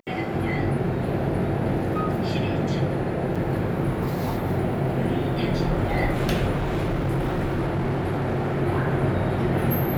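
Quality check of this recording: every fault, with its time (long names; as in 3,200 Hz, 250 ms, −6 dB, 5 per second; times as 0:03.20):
0:03.35–0:03.36: drop-out 5.8 ms
0:06.57–0:08.62: clipping −20.5 dBFS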